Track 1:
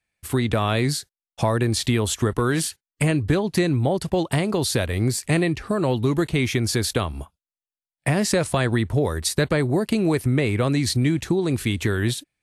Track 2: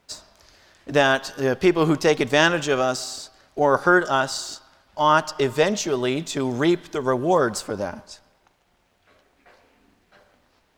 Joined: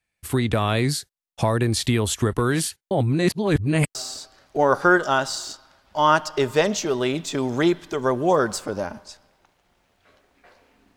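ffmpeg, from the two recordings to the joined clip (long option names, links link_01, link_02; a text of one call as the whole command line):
ffmpeg -i cue0.wav -i cue1.wav -filter_complex "[0:a]apad=whole_dur=10.96,atrim=end=10.96,asplit=2[link_01][link_02];[link_01]atrim=end=2.912[link_03];[link_02]atrim=start=2.908:end=3.952,asetpts=PTS-STARTPTS,areverse[link_04];[1:a]atrim=start=2.968:end=9.98[link_05];[link_03][link_04]acrossfade=duration=0.004:curve1=hsin:curve2=hsin[link_06];[link_06][link_05]acrossfade=duration=0.004:curve1=hsin:curve2=hsin" out.wav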